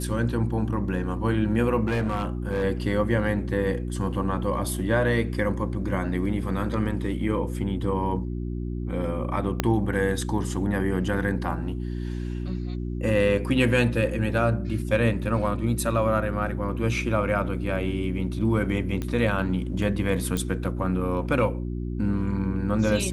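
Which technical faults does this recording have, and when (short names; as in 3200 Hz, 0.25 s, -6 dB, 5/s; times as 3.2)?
hum 60 Hz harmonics 6 -30 dBFS
1.85–2.64 clipped -21 dBFS
9.6 pop -7 dBFS
19.02 pop -17 dBFS
20.37 pop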